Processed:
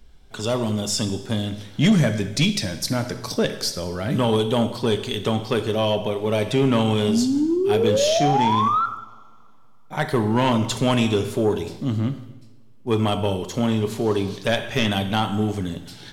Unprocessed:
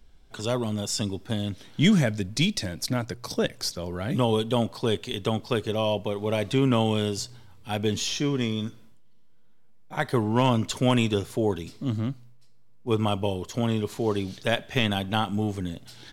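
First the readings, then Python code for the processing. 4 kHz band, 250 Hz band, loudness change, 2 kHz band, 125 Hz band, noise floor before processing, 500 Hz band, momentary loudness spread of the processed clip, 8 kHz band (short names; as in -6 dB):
+4.0 dB, +4.5 dB, +4.5 dB, +3.5 dB, +3.5 dB, -48 dBFS, +5.5 dB, 9 LU, +4.5 dB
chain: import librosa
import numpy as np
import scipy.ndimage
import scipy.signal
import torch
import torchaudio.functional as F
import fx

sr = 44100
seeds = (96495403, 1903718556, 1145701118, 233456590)

y = fx.spec_paint(x, sr, seeds[0], shape='rise', start_s=7.08, length_s=1.78, low_hz=210.0, high_hz=1400.0, level_db=-24.0)
y = fx.rev_double_slope(y, sr, seeds[1], early_s=0.92, late_s=2.8, knee_db=-23, drr_db=8.5)
y = 10.0 ** (-14.5 / 20.0) * np.tanh(y / 10.0 ** (-14.5 / 20.0))
y = y * 10.0 ** (4.5 / 20.0)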